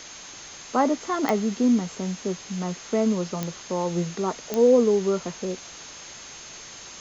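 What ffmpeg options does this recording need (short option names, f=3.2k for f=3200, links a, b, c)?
-af "adeclick=t=4,bandreject=f=6.4k:w=30,afwtdn=0.011"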